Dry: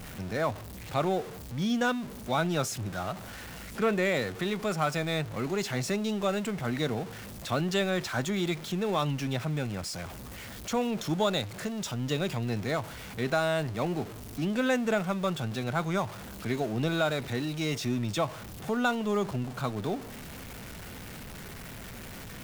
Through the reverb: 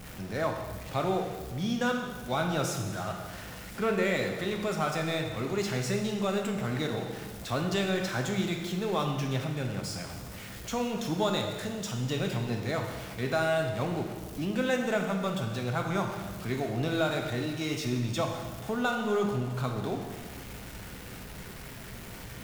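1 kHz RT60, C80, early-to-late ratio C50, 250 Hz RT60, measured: 1.5 s, 6.5 dB, 5.0 dB, 1.7 s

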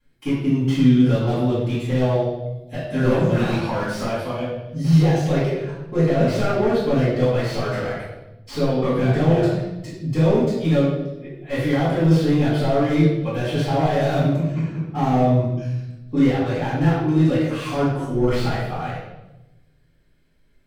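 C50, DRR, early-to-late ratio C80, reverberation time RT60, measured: 0.5 dB, −12.0 dB, 4.0 dB, 0.95 s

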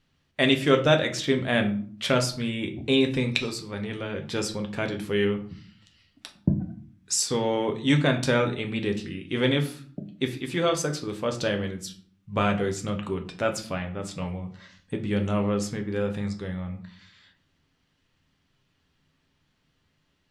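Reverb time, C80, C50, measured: 0.50 s, 16.0 dB, 12.5 dB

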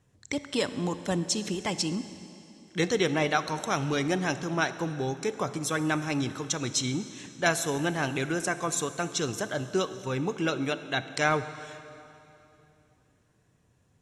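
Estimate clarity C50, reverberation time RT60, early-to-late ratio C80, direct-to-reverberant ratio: 12.5 dB, 3.0 s, 13.0 dB, 12.0 dB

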